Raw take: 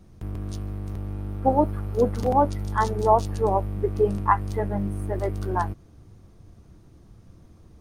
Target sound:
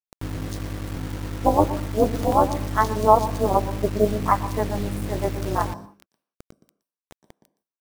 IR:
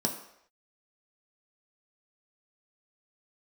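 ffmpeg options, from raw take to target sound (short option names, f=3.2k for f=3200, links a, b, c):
-filter_complex "[0:a]equalizer=f=160:w=6.3:g=-13.5,tremolo=f=210:d=0.947,acrusher=bits=6:mix=0:aa=0.000001,asplit=2[a][b];[1:a]atrim=start_sample=2205,afade=t=out:st=0.25:d=0.01,atrim=end_sample=11466,adelay=118[c];[b][c]afir=irnorm=-1:irlink=0,volume=-22dB[d];[a][d]amix=inputs=2:normalize=0,volume=5.5dB"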